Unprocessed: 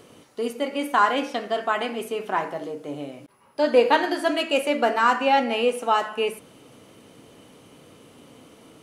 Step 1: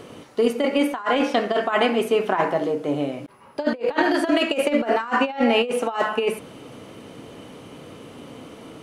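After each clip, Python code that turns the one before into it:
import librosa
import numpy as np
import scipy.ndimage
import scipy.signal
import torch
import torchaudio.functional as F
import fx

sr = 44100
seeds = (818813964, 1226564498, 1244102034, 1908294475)

y = fx.over_compress(x, sr, threshold_db=-25.0, ratio=-0.5)
y = fx.high_shelf(y, sr, hz=5000.0, db=-9.0)
y = y * librosa.db_to_amplitude(5.5)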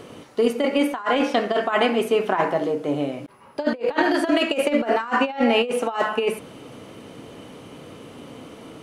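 y = x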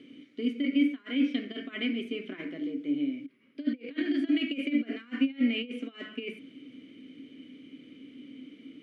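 y = fx.vowel_filter(x, sr, vowel='i')
y = y * librosa.db_to_amplitude(1.0)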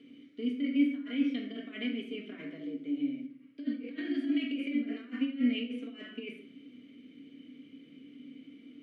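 y = fx.room_shoebox(x, sr, seeds[0], volume_m3=700.0, walls='furnished', distance_m=1.7)
y = y * librosa.db_to_amplitude(-7.0)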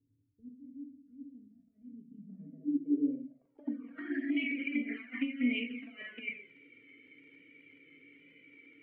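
y = fx.dmg_crackle(x, sr, seeds[1], per_s=32.0, level_db=-51.0)
y = fx.env_flanger(y, sr, rest_ms=2.7, full_db=-27.0)
y = fx.filter_sweep_lowpass(y, sr, from_hz=100.0, to_hz=2200.0, start_s=1.82, end_s=4.38, q=7.0)
y = y * librosa.db_to_amplitude(-2.5)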